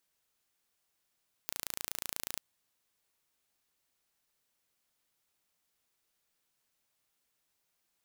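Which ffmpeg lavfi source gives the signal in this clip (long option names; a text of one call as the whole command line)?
ffmpeg -f lavfi -i "aevalsrc='0.355*eq(mod(n,1564),0)':duration=0.91:sample_rate=44100" out.wav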